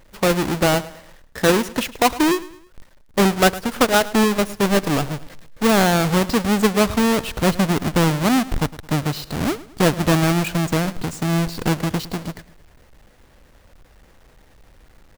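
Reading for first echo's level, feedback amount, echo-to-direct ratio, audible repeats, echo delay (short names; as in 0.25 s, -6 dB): -18.0 dB, 40%, -17.5 dB, 3, 0.108 s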